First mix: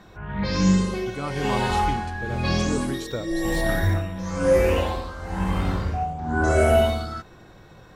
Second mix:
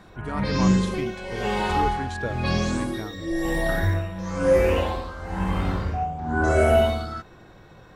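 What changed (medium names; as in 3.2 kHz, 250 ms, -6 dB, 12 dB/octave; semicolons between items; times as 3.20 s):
speech: entry -0.90 s; master: add tone controls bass -1 dB, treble -4 dB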